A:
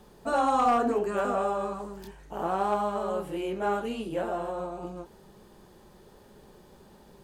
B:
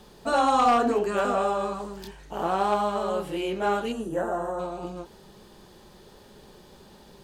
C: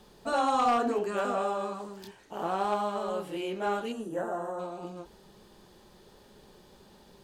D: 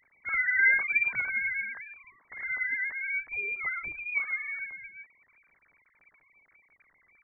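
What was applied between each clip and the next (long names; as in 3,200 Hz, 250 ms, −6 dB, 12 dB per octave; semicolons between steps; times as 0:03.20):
parametric band 4,000 Hz +7 dB 1.6 octaves; gain on a spectral selection 0:03.92–0:04.59, 2,000–5,700 Hz −16 dB; level +2.5 dB
mains-hum notches 50/100/150 Hz; level −5 dB
three sine waves on the formant tracks; voice inversion scrambler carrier 2,800 Hz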